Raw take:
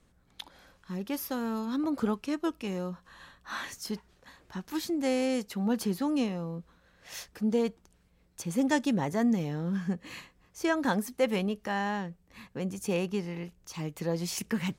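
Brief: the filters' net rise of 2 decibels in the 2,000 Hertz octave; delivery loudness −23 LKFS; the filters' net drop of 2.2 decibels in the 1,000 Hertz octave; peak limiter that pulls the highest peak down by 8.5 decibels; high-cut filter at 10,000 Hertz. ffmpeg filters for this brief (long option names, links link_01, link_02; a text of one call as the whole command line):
ffmpeg -i in.wav -af "lowpass=10000,equalizer=frequency=1000:width_type=o:gain=-3.5,equalizer=frequency=2000:width_type=o:gain=3.5,volume=10dB,alimiter=limit=-11dB:level=0:latency=1" out.wav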